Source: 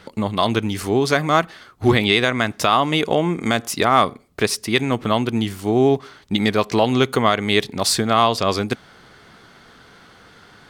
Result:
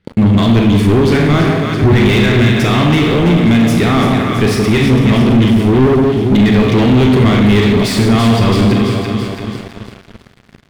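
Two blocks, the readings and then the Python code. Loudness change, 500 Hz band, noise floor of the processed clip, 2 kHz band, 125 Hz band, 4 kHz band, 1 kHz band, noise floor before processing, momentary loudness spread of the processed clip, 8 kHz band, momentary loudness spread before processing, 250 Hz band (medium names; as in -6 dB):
+8.0 dB, +6.0 dB, -45 dBFS, +5.0 dB, +15.0 dB, +2.5 dB, +0.5 dB, -49 dBFS, 4 LU, -0.5 dB, 7 LU, +12.5 dB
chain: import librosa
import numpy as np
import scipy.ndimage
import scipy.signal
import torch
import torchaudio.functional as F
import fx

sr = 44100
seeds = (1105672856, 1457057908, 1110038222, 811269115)

y = fx.band_shelf(x, sr, hz=880.0, db=-8.5, octaves=1.7)
y = fx.echo_alternate(y, sr, ms=166, hz=1000.0, feedback_pct=75, wet_db=-6)
y = fx.rev_schroeder(y, sr, rt60_s=0.82, comb_ms=27, drr_db=3.0)
y = fx.leveller(y, sr, passes=5)
y = fx.bass_treble(y, sr, bass_db=8, treble_db=-11)
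y = F.gain(torch.from_numpy(y), -8.0).numpy()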